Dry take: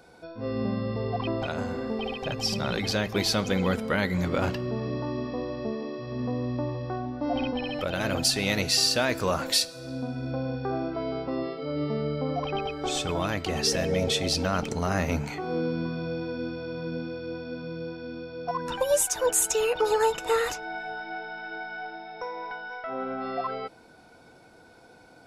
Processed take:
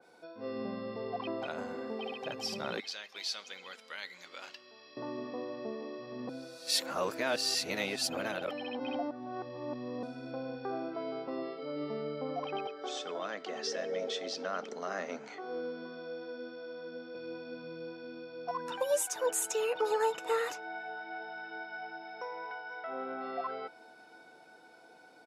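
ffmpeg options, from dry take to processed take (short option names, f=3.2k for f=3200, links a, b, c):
-filter_complex "[0:a]asettb=1/sr,asplit=3[a][b][c];[a]atrim=end=2.804[d];[b]atrim=start=2.8:end=4.97,asetpts=PTS-STARTPTS,afade=t=in:d=0.004:c=qsin,afade=t=out:st=2.166:d=0.004:c=qsin,bandpass=f=4.4k:t=q:w=1[e];[c]atrim=start=4.966[f];[d][e]acrossfade=d=0.004:c1=hsin:c2=qsin[g];[g][f]acrossfade=d=0.004:c1=qsin:c2=hsin,asettb=1/sr,asplit=3[h][i][j];[h]atrim=end=12.674[k];[i]atrim=start=12.67:end=17.15,asetpts=PTS-STARTPTS,afade=t=in:d=0.004:c=qsin,afade=t=out:st=4.476:d=0.004:c=qsin,highpass=f=230:w=0.5412,highpass=f=230:w=1.3066,equalizer=f=310:t=q:w=4:g=-9,equalizer=f=900:t=q:w=4:g=-7,equalizer=f=2.5k:t=q:w=4:g=-8,equalizer=f=4.3k:t=q:w=4:g=-4,lowpass=f=6.1k:w=0.5412,lowpass=f=6.1k:w=1.3066[l];[j]atrim=start=17.146[m];[k][l]acrossfade=d=0.004:c1=hsin:c2=qsin[n];[n][m]acrossfade=d=0.004:c1=qsin:c2=hsin,asplit=2[o][p];[p]afade=t=in:st=20.68:d=0.01,afade=t=out:st=21.71:d=0.01,aecho=0:1:520|1040|1560|2080|2600|3120|3640|4160|4680|5200|5720|6240:0.375837|0.30067|0.240536|0.192429|0.153943|0.123154|0.0985235|0.0788188|0.0630551|0.050444|0.0403552|0.0322842[q];[o][q]amix=inputs=2:normalize=0,asplit=3[r][s][t];[r]atrim=end=6.292[u];[s]atrim=start=6.288:end=10.032,asetpts=PTS-STARTPTS,areverse[v];[t]atrim=start=10.028[w];[u][v]acrossfade=d=0.004:c1=hsin:c2=hsin[x];[x][w]acrossfade=d=0.004:c1=hsin:c2=hsin,highpass=270,adynamicequalizer=threshold=0.00708:dfrequency=2900:dqfactor=0.7:tfrequency=2900:tqfactor=0.7:attack=5:release=100:ratio=0.375:range=2:mode=cutabove:tftype=highshelf,volume=-6dB"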